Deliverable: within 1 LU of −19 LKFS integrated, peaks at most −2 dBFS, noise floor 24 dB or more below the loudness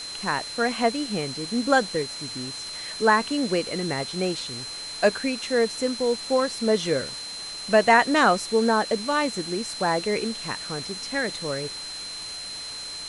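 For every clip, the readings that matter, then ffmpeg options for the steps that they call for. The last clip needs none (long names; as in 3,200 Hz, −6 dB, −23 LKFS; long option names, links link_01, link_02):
interfering tone 4,100 Hz; level of the tone −34 dBFS; background noise floor −36 dBFS; target noise floor −49 dBFS; integrated loudness −25.0 LKFS; sample peak −4.5 dBFS; target loudness −19.0 LKFS
→ -af "bandreject=frequency=4100:width=30"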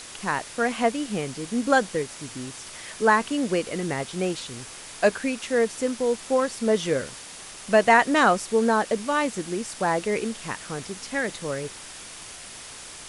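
interfering tone none found; background noise floor −42 dBFS; target noise floor −49 dBFS
→ -af "afftdn=noise_reduction=7:noise_floor=-42"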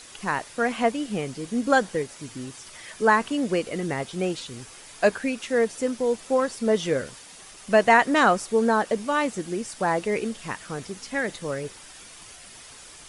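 background noise floor −46 dBFS; target noise floor −49 dBFS
→ -af "afftdn=noise_reduction=6:noise_floor=-46"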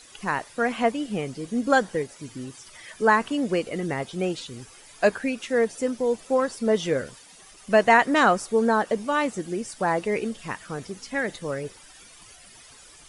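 background noise floor −50 dBFS; integrated loudness −24.5 LKFS; sample peak −4.5 dBFS; target loudness −19.0 LKFS
→ -af "volume=5.5dB,alimiter=limit=-2dB:level=0:latency=1"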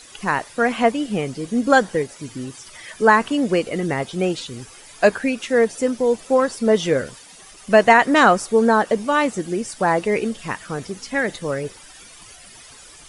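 integrated loudness −19.5 LKFS; sample peak −2.0 dBFS; background noise floor −44 dBFS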